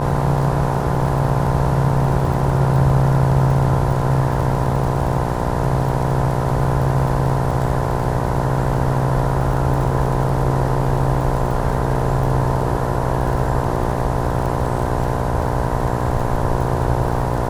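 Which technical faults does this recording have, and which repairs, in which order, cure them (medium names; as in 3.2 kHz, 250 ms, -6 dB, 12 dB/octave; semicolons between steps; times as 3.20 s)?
buzz 60 Hz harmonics 17 -23 dBFS
crackle 38 per s -26 dBFS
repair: de-click; de-hum 60 Hz, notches 17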